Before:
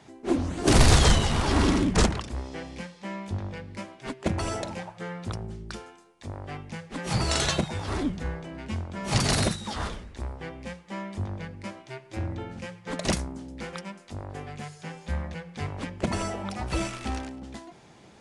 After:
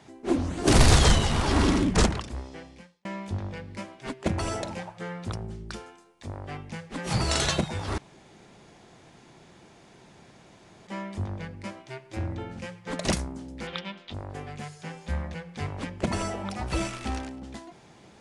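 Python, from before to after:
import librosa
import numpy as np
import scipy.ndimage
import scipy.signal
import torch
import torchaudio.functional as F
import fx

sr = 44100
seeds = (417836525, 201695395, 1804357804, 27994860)

y = fx.lowpass_res(x, sr, hz=3500.0, q=4.5, at=(13.67, 14.14))
y = fx.edit(y, sr, fx.fade_out_span(start_s=2.16, length_s=0.89),
    fx.room_tone_fill(start_s=7.98, length_s=2.89), tone=tone)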